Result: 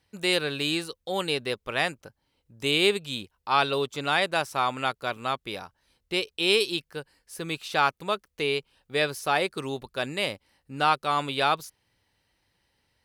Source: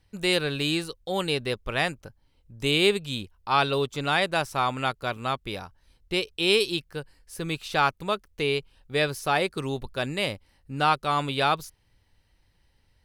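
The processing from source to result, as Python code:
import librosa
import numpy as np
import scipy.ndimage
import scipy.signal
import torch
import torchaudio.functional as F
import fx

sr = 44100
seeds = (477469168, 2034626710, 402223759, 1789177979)

y = fx.highpass(x, sr, hz=240.0, slope=6)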